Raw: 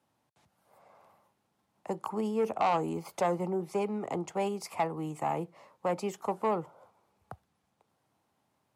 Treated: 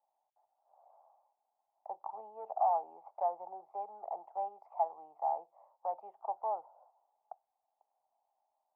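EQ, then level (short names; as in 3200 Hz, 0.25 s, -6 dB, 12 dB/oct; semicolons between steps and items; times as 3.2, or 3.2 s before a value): Butterworth band-pass 760 Hz, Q 3; 0.0 dB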